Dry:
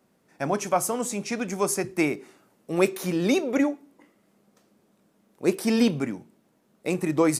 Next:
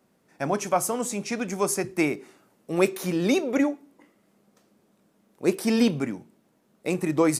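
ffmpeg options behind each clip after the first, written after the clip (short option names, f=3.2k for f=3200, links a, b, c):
-af anull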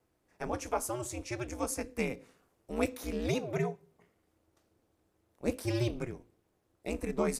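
-af "aeval=exprs='val(0)*sin(2*PI*120*n/s)':c=same,volume=-6.5dB"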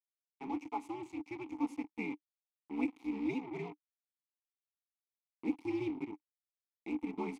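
-filter_complex "[0:a]acrusher=bits=5:mix=0:aa=0.5,asplit=3[a][b][c];[a]bandpass=f=300:t=q:w=8,volume=0dB[d];[b]bandpass=f=870:t=q:w=8,volume=-6dB[e];[c]bandpass=f=2.24k:t=q:w=8,volume=-9dB[f];[d][e][f]amix=inputs=3:normalize=0,volume=6.5dB"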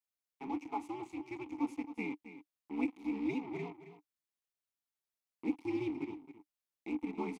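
-af "aecho=1:1:269:0.224"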